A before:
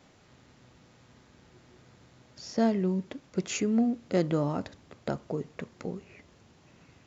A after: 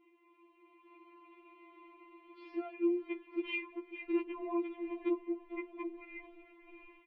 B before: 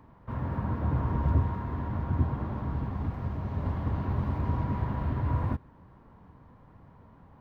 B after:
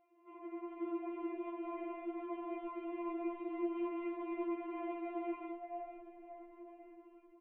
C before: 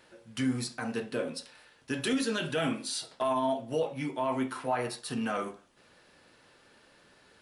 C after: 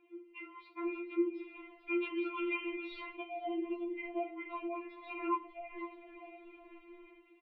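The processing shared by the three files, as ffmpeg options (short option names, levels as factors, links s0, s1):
-filter_complex "[0:a]afftfilt=real='re*lt(hypot(re,im),0.398)':imag='im*lt(hypot(re,im),0.398)':win_size=1024:overlap=0.75,aemphasis=mode=production:type=50fm,dynaudnorm=f=580:g=3:m=3.55,highpass=f=330:t=q:w=0.5412,highpass=f=330:t=q:w=1.307,lowpass=f=3100:t=q:w=0.5176,lowpass=f=3100:t=q:w=0.7071,lowpass=f=3100:t=q:w=1.932,afreqshift=-210,asplit=3[s0][s1][s2];[s0]bandpass=f=300:t=q:w=8,volume=1[s3];[s1]bandpass=f=870:t=q:w=8,volume=0.501[s4];[s2]bandpass=f=2240:t=q:w=8,volume=0.355[s5];[s3][s4][s5]amix=inputs=3:normalize=0,asplit=2[s6][s7];[s7]asplit=4[s8][s9][s10][s11];[s8]adelay=441,afreqshift=-59,volume=0.188[s12];[s9]adelay=882,afreqshift=-118,volume=0.0851[s13];[s10]adelay=1323,afreqshift=-177,volume=0.038[s14];[s11]adelay=1764,afreqshift=-236,volume=0.0172[s15];[s12][s13][s14][s15]amix=inputs=4:normalize=0[s16];[s6][s16]amix=inputs=2:normalize=0,acompressor=threshold=0.0112:ratio=8,afftfilt=real='re*4*eq(mod(b,16),0)':imag='im*4*eq(mod(b,16),0)':win_size=2048:overlap=0.75,volume=2.99"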